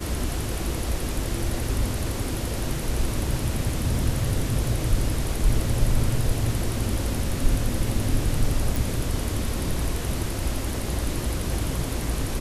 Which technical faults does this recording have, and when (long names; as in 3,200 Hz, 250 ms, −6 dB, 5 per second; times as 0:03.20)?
0:08.76: click